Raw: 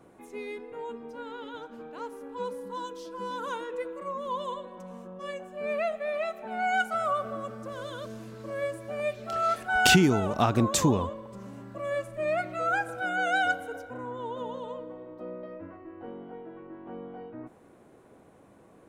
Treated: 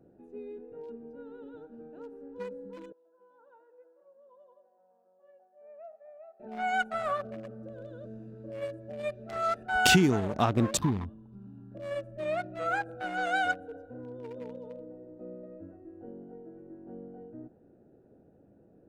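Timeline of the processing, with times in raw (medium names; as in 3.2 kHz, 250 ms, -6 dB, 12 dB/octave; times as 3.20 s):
2.92–6.40 s: ladder band-pass 940 Hz, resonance 55%
10.77–11.72 s: static phaser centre 2 kHz, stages 6
whole clip: local Wiener filter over 41 samples; trim -1.5 dB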